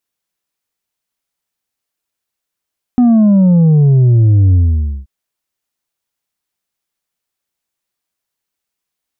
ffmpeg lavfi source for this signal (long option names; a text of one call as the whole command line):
ffmpeg -f lavfi -i "aevalsrc='0.501*clip((2.08-t)/0.52,0,1)*tanh(1.58*sin(2*PI*250*2.08/log(65/250)*(exp(log(65/250)*t/2.08)-1)))/tanh(1.58)':duration=2.08:sample_rate=44100" out.wav